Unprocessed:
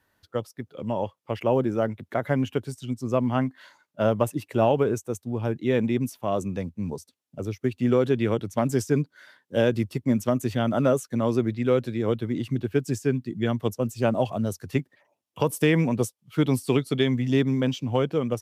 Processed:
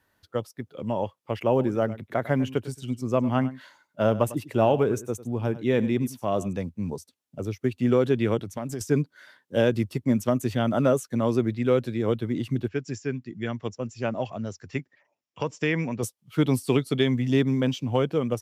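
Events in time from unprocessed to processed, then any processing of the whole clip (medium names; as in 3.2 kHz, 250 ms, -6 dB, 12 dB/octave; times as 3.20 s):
1.49–6.53 s: delay 100 ms -16.5 dB
8.41–8.81 s: compression 4:1, threshold -29 dBFS
12.68–16.03 s: rippled Chebyshev low-pass 7.4 kHz, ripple 6 dB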